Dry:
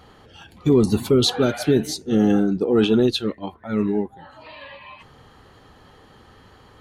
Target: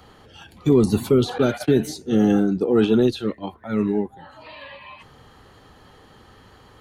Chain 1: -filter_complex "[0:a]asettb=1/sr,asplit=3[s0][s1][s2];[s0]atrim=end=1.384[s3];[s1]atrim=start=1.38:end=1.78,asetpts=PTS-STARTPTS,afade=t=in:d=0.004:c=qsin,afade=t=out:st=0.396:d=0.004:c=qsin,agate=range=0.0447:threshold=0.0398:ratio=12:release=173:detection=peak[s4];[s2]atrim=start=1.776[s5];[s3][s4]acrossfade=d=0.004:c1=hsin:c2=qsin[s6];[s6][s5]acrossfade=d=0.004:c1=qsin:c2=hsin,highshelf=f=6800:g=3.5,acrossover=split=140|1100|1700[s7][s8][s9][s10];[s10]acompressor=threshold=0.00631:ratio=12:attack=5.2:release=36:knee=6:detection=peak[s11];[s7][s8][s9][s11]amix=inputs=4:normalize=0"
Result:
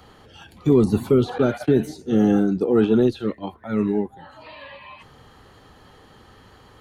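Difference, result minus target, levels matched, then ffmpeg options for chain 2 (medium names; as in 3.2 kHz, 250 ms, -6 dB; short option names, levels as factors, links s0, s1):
compression: peak gain reduction +10 dB
-filter_complex "[0:a]asettb=1/sr,asplit=3[s0][s1][s2];[s0]atrim=end=1.384[s3];[s1]atrim=start=1.38:end=1.78,asetpts=PTS-STARTPTS,afade=t=in:d=0.004:c=qsin,afade=t=out:st=0.396:d=0.004:c=qsin,agate=range=0.0447:threshold=0.0398:ratio=12:release=173:detection=peak[s4];[s2]atrim=start=1.776[s5];[s3][s4]acrossfade=d=0.004:c1=hsin:c2=qsin[s6];[s6][s5]acrossfade=d=0.004:c1=qsin:c2=hsin,highshelf=f=6800:g=3.5,acrossover=split=140|1100|1700[s7][s8][s9][s10];[s10]acompressor=threshold=0.0224:ratio=12:attack=5.2:release=36:knee=6:detection=peak[s11];[s7][s8][s9][s11]amix=inputs=4:normalize=0"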